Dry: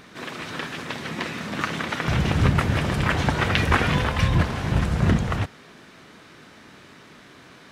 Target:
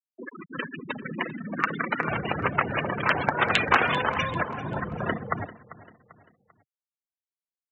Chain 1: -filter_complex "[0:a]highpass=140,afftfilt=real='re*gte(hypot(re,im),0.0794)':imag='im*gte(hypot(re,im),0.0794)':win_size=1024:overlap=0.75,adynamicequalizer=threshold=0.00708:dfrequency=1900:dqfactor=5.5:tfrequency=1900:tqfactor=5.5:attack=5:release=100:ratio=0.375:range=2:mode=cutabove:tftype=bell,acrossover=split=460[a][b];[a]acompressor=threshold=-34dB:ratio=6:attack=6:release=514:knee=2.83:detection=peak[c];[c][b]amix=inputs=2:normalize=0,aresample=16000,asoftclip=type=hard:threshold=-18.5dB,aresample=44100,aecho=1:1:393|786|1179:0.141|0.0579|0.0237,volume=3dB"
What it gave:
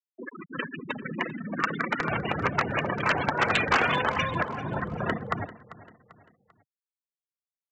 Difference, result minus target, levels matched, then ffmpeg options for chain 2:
hard clip: distortion +10 dB
-filter_complex "[0:a]highpass=140,afftfilt=real='re*gte(hypot(re,im),0.0794)':imag='im*gte(hypot(re,im),0.0794)':win_size=1024:overlap=0.75,adynamicequalizer=threshold=0.00708:dfrequency=1900:dqfactor=5.5:tfrequency=1900:tqfactor=5.5:attack=5:release=100:ratio=0.375:range=2:mode=cutabove:tftype=bell,acrossover=split=460[a][b];[a]acompressor=threshold=-34dB:ratio=6:attack=6:release=514:knee=2.83:detection=peak[c];[c][b]amix=inputs=2:normalize=0,aresample=16000,asoftclip=type=hard:threshold=-10dB,aresample=44100,aecho=1:1:393|786|1179:0.141|0.0579|0.0237,volume=3dB"

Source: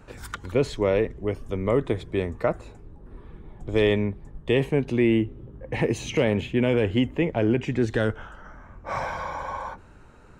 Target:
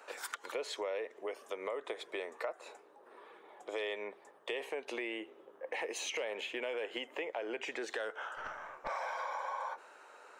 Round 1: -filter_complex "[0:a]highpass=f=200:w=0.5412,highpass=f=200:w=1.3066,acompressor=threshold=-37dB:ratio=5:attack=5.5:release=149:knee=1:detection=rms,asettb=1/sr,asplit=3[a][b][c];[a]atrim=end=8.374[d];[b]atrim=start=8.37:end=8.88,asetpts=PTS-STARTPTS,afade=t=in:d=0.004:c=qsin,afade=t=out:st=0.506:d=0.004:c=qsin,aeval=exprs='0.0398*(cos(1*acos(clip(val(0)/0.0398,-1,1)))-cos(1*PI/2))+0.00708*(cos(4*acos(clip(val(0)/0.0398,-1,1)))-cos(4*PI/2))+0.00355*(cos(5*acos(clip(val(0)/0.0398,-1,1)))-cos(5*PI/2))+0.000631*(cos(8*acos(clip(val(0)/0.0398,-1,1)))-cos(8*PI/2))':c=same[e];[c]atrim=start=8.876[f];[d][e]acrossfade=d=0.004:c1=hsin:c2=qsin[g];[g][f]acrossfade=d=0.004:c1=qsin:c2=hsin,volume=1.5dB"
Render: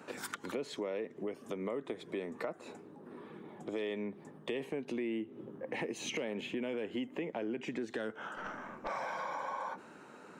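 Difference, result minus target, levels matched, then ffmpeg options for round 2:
250 Hz band +10.0 dB
-filter_complex "[0:a]highpass=f=500:w=0.5412,highpass=f=500:w=1.3066,acompressor=threshold=-37dB:ratio=5:attack=5.5:release=149:knee=1:detection=rms,asettb=1/sr,asplit=3[a][b][c];[a]atrim=end=8.374[d];[b]atrim=start=8.37:end=8.88,asetpts=PTS-STARTPTS,afade=t=in:d=0.004:c=qsin,afade=t=out:st=0.506:d=0.004:c=qsin,aeval=exprs='0.0398*(cos(1*acos(clip(val(0)/0.0398,-1,1)))-cos(1*PI/2))+0.00708*(cos(4*acos(clip(val(0)/0.0398,-1,1)))-cos(4*PI/2))+0.00355*(cos(5*acos(clip(val(0)/0.0398,-1,1)))-cos(5*PI/2))+0.000631*(cos(8*acos(clip(val(0)/0.0398,-1,1)))-cos(8*PI/2))':c=same[e];[c]atrim=start=8.876[f];[d][e]acrossfade=d=0.004:c1=hsin:c2=qsin[g];[g][f]acrossfade=d=0.004:c1=qsin:c2=hsin,volume=1.5dB"

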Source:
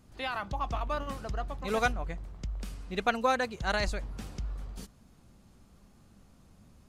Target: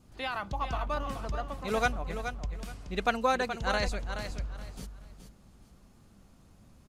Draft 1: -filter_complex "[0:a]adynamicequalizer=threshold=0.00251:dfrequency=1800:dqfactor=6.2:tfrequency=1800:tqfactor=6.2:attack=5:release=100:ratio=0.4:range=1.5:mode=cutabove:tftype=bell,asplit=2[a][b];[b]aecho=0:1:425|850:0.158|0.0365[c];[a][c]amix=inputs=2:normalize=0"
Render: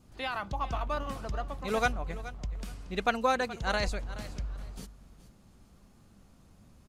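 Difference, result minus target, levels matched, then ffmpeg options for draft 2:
echo-to-direct -7 dB
-filter_complex "[0:a]adynamicequalizer=threshold=0.00251:dfrequency=1800:dqfactor=6.2:tfrequency=1800:tqfactor=6.2:attack=5:release=100:ratio=0.4:range=1.5:mode=cutabove:tftype=bell,asplit=2[a][b];[b]aecho=0:1:425|850|1275:0.355|0.0816|0.0188[c];[a][c]amix=inputs=2:normalize=0"

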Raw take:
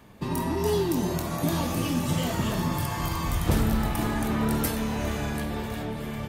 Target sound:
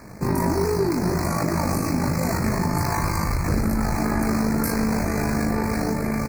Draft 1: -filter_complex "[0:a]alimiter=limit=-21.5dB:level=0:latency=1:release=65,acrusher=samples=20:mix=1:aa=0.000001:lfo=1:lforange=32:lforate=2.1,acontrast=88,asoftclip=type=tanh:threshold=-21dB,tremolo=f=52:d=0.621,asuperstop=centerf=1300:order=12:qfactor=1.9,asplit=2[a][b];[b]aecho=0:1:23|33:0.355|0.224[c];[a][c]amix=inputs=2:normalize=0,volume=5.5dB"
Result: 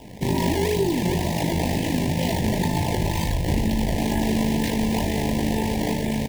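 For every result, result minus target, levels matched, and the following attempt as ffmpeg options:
4000 Hz band +6.0 dB; decimation with a swept rate: distortion +8 dB
-filter_complex "[0:a]alimiter=limit=-21.5dB:level=0:latency=1:release=65,acrusher=samples=20:mix=1:aa=0.000001:lfo=1:lforange=32:lforate=2.1,acontrast=88,asoftclip=type=tanh:threshold=-21dB,tremolo=f=52:d=0.621,asuperstop=centerf=3200:order=12:qfactor=1.9,asplit=2[a][b];[b]aecho=0:1:23|33:0.355|0.224[c];[a][c]amix=inputs=2:normalize=0,volume=5.5dB"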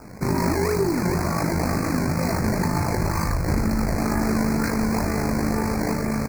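decimation with a swept rate: distortion +8 dB
-filter_complex "[0:a]alimiter=limit=-21.5dB:level=0:latency=1:release=65,acrusher=samples=5:mix=1:aa=0.000001:lfo=1:lforange=8:lforate=2.1,acontrast=88,asoftclip=type=tanh:threshold=-21dB,tremolo=f=52:d=0.621,asuperstop=centerf=3200:order=12:qfactor=1.9,asplit=2[a][b];[b]aecho=0:1:23|33:0.355|0.224[c];[a][c]amix=inputs=2:normalize=0,volume=5.5dB"

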